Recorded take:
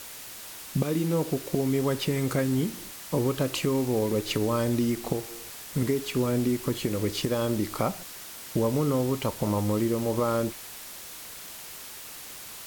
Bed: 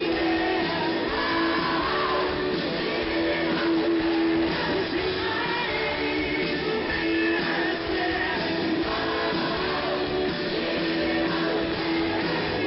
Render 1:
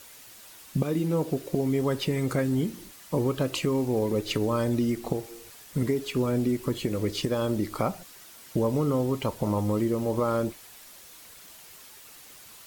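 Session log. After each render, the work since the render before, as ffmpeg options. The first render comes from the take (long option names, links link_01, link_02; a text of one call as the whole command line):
ffmpeg -i in.wav -af "afftdn=noise_reduction=8:noise_floor=-42" out.wav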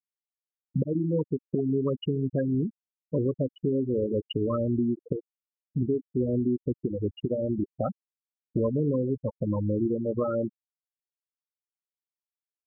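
ffmpeg -i in.wav -af "agate=range=-14dB:threshold=-37dB:ratio=16:detection=peak,afftfilt=real='re*gte(hypot(re,im),0.178)':imag='im*gte(hypot(re,im),0.178)':win_size=1024:overlap=0.75" out.wav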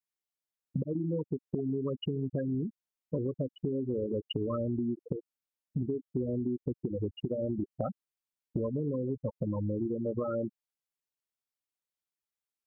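ffmpeg -i in.wav -af "acompressor=threshold=-29dB:ratio=6" out.wav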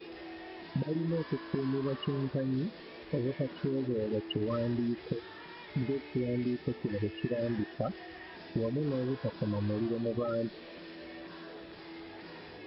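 ffmpeg -i in.wav -i bed.wav -filter_complex "[1:a]volume=-21.5dB[link_01];[0:a][link_01]amix=inputs=2:normalize=0" out.wav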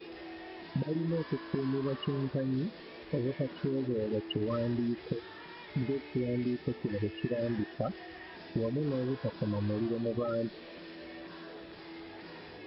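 ffmpeg -i in.wav -af anull out.wav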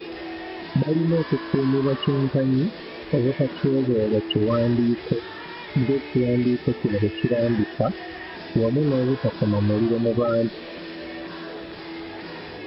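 ffmpeg -i in.wav -af "volume=11.5dB" out.wav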